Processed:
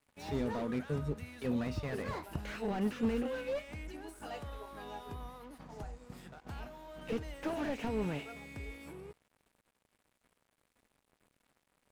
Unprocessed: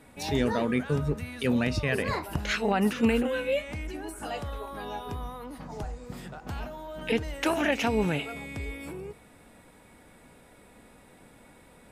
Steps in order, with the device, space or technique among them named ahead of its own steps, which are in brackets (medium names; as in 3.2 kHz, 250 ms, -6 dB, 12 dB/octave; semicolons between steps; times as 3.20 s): early transistor amplifier (crossover distortion -50.5 dBFS; slew-rate limiter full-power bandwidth 34 Hz); trim -7.5 dB